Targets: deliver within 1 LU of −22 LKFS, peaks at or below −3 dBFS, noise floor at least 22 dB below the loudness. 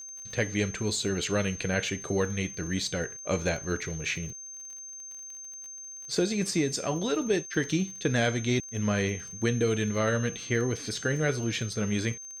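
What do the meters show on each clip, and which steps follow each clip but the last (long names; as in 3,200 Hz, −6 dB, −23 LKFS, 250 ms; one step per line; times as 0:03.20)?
crackle rate 33 per second; interfering tone 6,300 Hz; level of the tone −40 dBFS; integrated loudness −29.0 LKFS; sample peak −13.0 dBFS; target loudness −22.0 LKFS
→ click removal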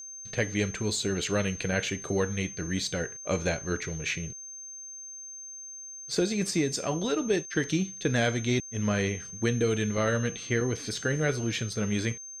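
crackle rate 0.16 per second; interfering tone 6,300 Hz; level of the tone −40 dBFS
→ notch filter 6,300 Hz, Q 30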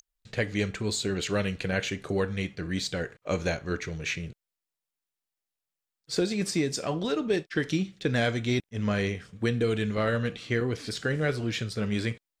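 interfering tone none found; integrated loudness −29.5 LKFS; sample peak −13.0 dBFS; target loudness −22.0 LKFS
→ level +7.5 dB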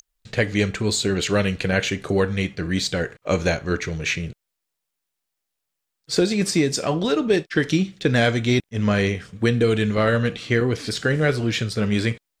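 integrated loudness −22.0 LKFS; sample peak −5.5 dBFS; background noise floor −81 dBFS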